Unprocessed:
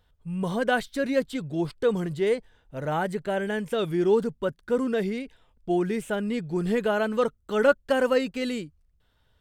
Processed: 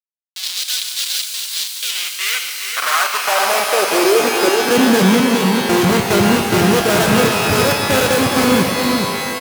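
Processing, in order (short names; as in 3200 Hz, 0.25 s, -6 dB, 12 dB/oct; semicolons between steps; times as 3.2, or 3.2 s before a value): level-crossing sampler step -25.5 dBFS; high shelf 3900 Hz +9.5 dB; notch comb 900 Hz; Schmitt trigger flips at -33.5 dBFS; high-pass sweep 3900 Hz -> 110 Hz, 1.66–5.57; on a send: echo 0.416 s -6 dB; on the sum: maximiser +16.5 dB; shimmer reverb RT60 3 s, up +12 st, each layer -2 dB, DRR 5 dB; gain -5.5 dB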